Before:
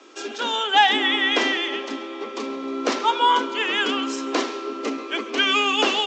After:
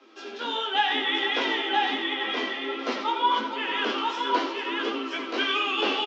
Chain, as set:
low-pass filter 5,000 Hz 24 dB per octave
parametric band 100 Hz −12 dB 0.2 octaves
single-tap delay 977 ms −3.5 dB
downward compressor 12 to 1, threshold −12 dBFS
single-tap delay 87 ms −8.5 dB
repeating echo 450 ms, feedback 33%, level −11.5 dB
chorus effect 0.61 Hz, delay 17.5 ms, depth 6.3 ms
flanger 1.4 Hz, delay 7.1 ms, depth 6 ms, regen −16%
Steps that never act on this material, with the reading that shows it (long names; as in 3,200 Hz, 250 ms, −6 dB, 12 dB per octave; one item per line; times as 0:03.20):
parametric band 100 Hz: nothing at its input below 190 Hz